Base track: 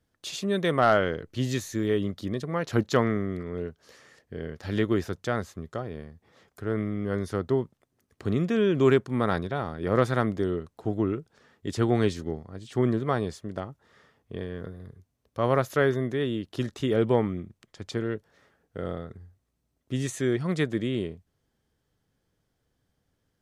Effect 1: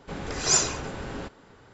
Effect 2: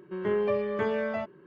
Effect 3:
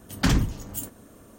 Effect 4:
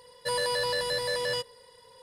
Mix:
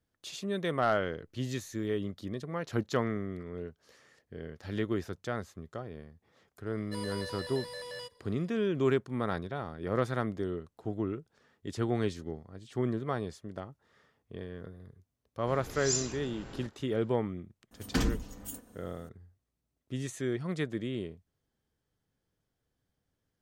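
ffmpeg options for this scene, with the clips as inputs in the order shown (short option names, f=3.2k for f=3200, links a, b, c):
-filter_complex "[0:a]volume=-7dB[a];[1:a]acrossover=split=320|3000[b][c][d];[c]acompressor=threshold=-38dB:ratio=6:attack=3.2:release=140:knee=2.83:detection=peak[e];[b][e][d]amix=inputs=3:normalize=0[f];[3:a]aecho=1:1:4:0.45[g];[4:a]atrim=end=2.02,asetpts=PTS-STARTPTS,volume=-12.5dB,afade=t=in:d=0.004:c=hsin,afade=t=out:st=2.016:d=0.004:c=hsin,adelay=293706S[h];[f]atrim=end=1.73,asetpts=PTS-STARTPTS,volume=-9.5dB,afade=t=in:d=0.004:c=hsin,afade=t=out:st=1.726:d=0.004:c=hsin,adelay=15390[i];[g]atrim=end=1.38,asetpts=PTS-STARTPTS,volume=-9dB,afade=t=in:d=0.004:c=hsin,afade=t=out:st=1.376:d=0.004:c=hsin,adelay=17710[j];[a][h][i][j]amix=inputs=4:normalize=0"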